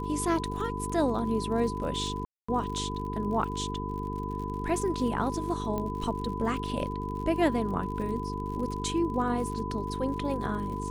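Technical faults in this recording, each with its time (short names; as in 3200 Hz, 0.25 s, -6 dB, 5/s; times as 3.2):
buzz 50 Hz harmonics 9 -35 dBFS
crackle 65/s -38 dBFS
tone 1000 Hz -36 dBFS
2.25–2.48 gap 0.235 s
5.78 pop -20 dBFS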